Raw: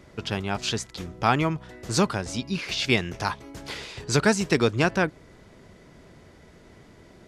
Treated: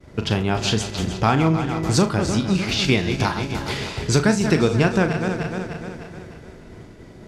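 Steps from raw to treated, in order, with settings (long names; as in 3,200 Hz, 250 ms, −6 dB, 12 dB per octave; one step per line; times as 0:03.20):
feedback delay that plays each chunk backwards 151 ms, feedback 72%, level −11 dB
downward expander −46 dBFS
low-shelf EQ 470 Hz +6.5 dB
downward compressor 2 to 1, threshold −24 dBFS, peak gain reduction 7.5 dB
flutter between parallel walls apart 6.4 metres, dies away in 0.23 s
level +5.5 dB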